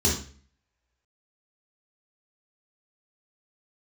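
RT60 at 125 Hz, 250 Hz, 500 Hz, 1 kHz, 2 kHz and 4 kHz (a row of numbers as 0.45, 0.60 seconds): 0.55, 0.55, 0.45, 0.40, 0.45, 0.40 seconds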